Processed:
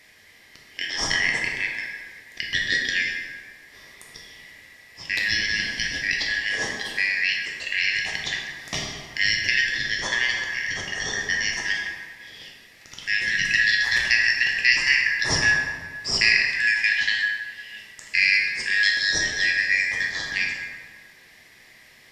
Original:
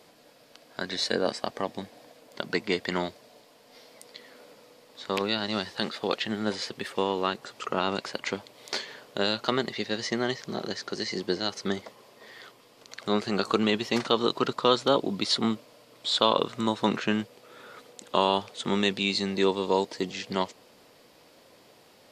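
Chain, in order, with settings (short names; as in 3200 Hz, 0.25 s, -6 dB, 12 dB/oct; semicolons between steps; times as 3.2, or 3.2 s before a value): four-band scrambler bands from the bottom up 4123; plate-style reverb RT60 1.7 s, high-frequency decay 0.55×, DRR -1.5 dB; gain +1.5 dB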